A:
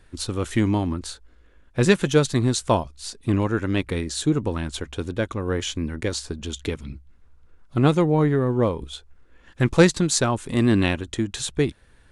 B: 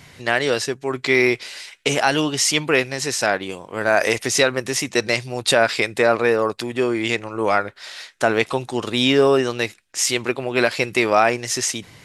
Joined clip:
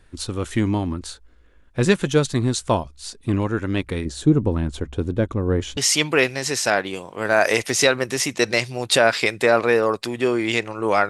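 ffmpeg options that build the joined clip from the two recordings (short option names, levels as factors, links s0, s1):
-filter_complex "[0:a]asettb=1/sr,asplit=3[s0][s1][s2];[s0]atrim=end=4.054[s3];[s1]atrim=start=4.05:end=5.77,asetpts=PTS-STARTPTS,afade=t=in:d=0.004:c=qsin,afade=t=out:st=1.716:d=0.004:c=qsin,tiltshelf=f=910:g=6[s4];[s2]atrim=start=5.766[s5];[s3][s4]acrossfade=d=0.004:c1=hsin:c2=qsin[s6];[s6][s5]acrossfade=d=0.004:c1=qsin:c2=hsin,apad=whole_dur=11.09,atrim=end=11.09,atrim=end=5.772[s7];[1:a]atrim=start=2.328:end=7.65[s8];[s7][s8]acrossfade=d=0.004:c1=hsin:c2=hsin"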